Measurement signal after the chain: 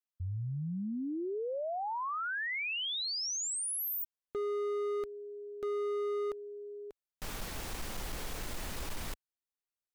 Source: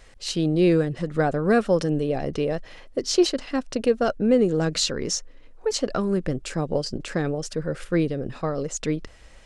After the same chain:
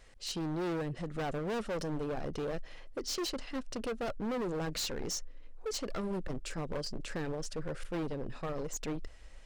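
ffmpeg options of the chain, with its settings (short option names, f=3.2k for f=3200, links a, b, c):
-af "asubboost=boost=2:cutoff=62,asoftclip=type=hard:threshold=-24.5dB,volume=-8dB"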